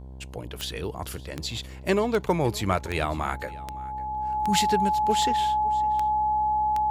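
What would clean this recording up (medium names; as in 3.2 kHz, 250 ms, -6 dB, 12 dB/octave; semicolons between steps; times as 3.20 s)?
de-click; de-hum 65.1 Hz, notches 16; band-stop 850 Hz, Q 30; inverse comb 560 ms -21 dB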